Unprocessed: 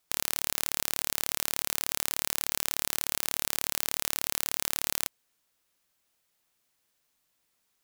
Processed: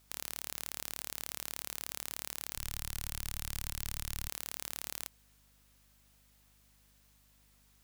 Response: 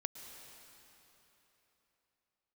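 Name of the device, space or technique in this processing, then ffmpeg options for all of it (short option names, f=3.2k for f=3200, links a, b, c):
valve amplifier with mains hum: -filter_complex "[0:a]asplit=3[a][b][c];[a]afade=t=out:st=2.55:d=0.02[d];[b]asubboost=boost=4:cutoff=84,afade=t=in:st=2.55:d=0.02,afade=t=out:st=4.28:d=0.02[e];[c]afade=t=in:st=4.28:d=0.02[f];[d][e][f]amix=inputs=3:normalize=0,aeval=exprs='(tanh(5.62*val(0)+0.55)-tanh(0.55))/5.62':c=same,aeval=exprs='val(0)+0.000141*(sin(2*PI*50*n/s)+sin(2*PI*2*50*n/s)/2+sin(2*PI*3*50*n/s)/3+sin(2*PI*4*50*n/s)/4+sin(2*PI*5*50*n/s)/5)':c=same,volume=9dB"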